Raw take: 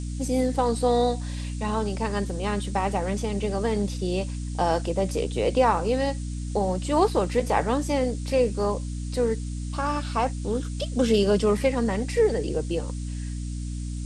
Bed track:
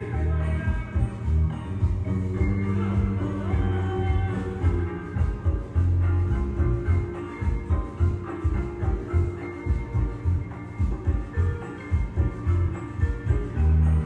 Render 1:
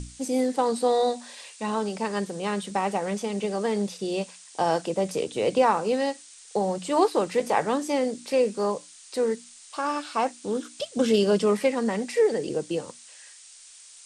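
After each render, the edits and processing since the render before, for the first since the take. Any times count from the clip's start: notches 60/120/180/240/300 Hz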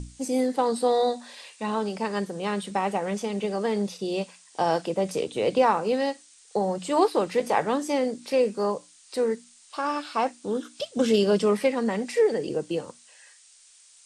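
noise print and reduce 6 dB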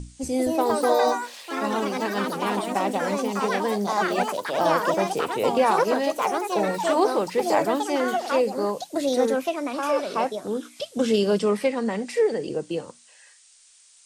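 echoes that change speed 0.233 s, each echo +4 st, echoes 3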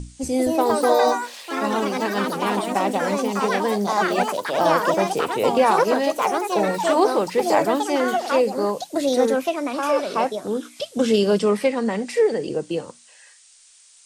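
gain +3 dB

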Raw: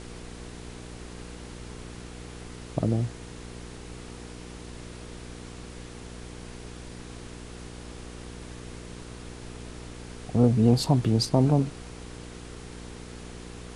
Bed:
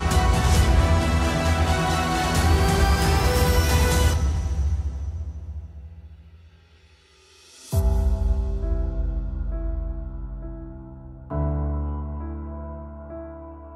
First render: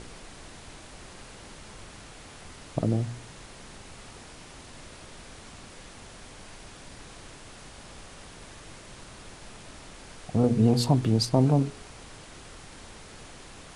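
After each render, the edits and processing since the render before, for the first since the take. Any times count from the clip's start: de-hum 60 Hz, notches 8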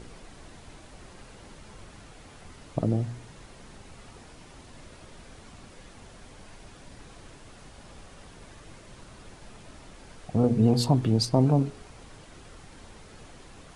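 denoiser 6 dB, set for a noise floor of -47 dBFS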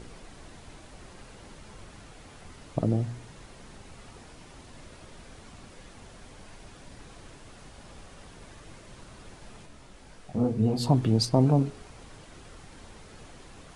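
9.65–10.84 detuned doubles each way 24 cents -> 34 cents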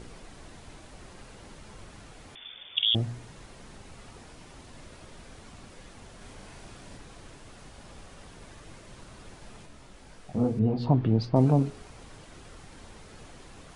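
2.35–2.95 inverted band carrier 3500 Hz; 6.17–6.97 doubler 37 ms -2.5 dB; 10.59–11.36 air absorption 310 m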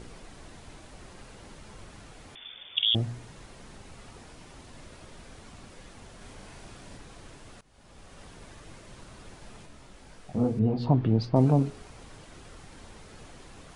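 7.61–8.22 fade in, from -22 dB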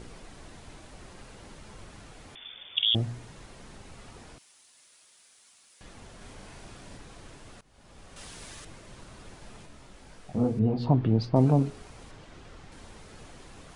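4.38–5.81 differentiator; 8.16–8.65 high shelf 2200 Hz +11.5 dB; 12.11–12.72 air absorption 64 m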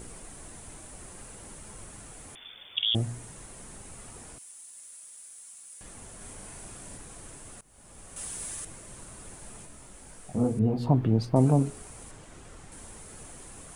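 resonant high shelf 6500 Hz +12.5 dB, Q 1.5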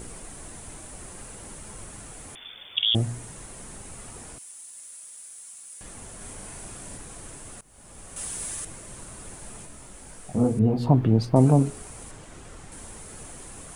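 gain +4 dB

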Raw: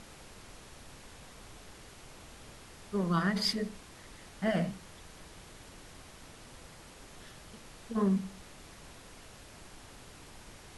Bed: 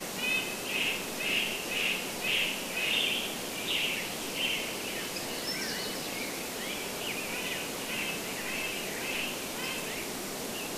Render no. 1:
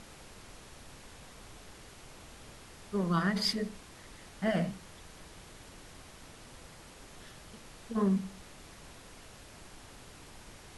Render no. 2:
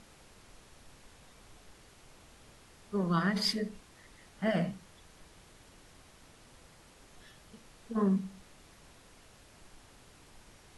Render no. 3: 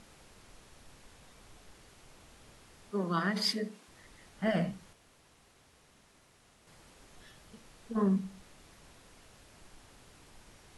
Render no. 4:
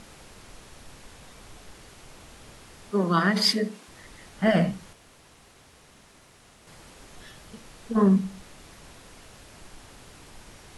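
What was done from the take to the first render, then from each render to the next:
nothing audible
noise print and reduce 6 dB
2.91–3.88 HPF 190 Hz 24 dB/oct; 4.93–6.67 room tone
gain +9 dB

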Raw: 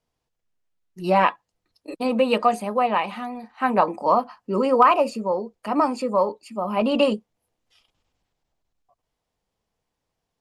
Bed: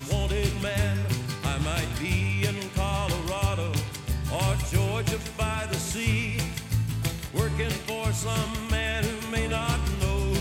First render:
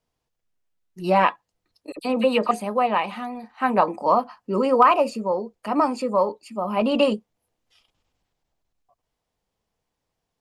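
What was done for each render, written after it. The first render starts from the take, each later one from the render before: 1.92–2.51 dispersion lows, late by 46 ms, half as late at 2400 Hz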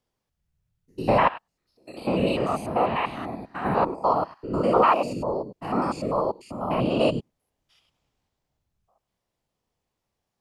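stepped spectrum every 0.1 s; whisperiser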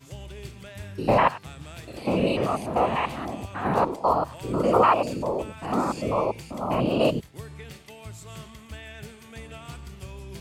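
add bed -14 dB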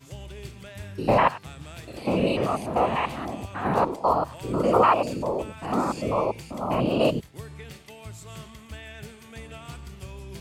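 nothing audible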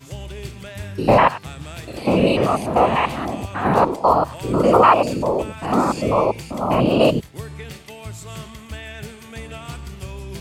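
gain +7 dB; limiter -3 dBFS, peak gain reduction 2.5 dB

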